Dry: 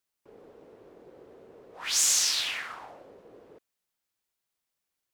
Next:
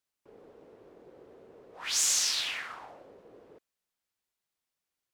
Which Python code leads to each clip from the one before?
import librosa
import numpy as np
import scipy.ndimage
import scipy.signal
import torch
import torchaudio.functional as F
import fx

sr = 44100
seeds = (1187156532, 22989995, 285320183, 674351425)

y = fx.high_shelf(x, sr, hz=11000.0, db=-4.5)
y = y * 10.0 ** (-2.0 / 20.0)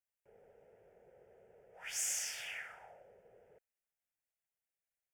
y = fx.fixed_phaser(x, sr, hz=1100.0, stages=6)
y = y * 10.0 ** (-6.0 / 20.0)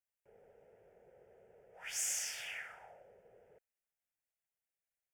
y = x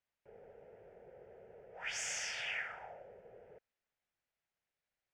y = fx.air_absorb(x, sr, metres=150.0)
y = y * 10.0 ** (7.0 / 20.0)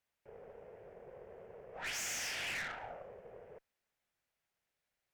y = fx.tube_stage(x, sr, drive_db=44.0, bias=0.7)
y = y * 10.0 ** (7.5 / 20.0)